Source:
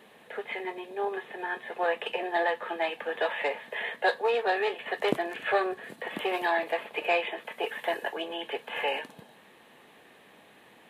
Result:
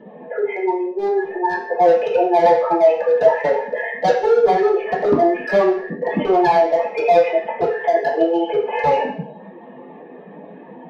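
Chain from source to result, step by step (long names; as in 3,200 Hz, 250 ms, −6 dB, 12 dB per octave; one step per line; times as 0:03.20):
expanding power law on the bin magnitudes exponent 2.4
low-pass filter 2,400 Hz 6 dB per octave
hard clipping −28 dBFS, distortion −9 dB
convolution reverb RT60 0.55 s, pre-delay 3 ms, DRR −11 dB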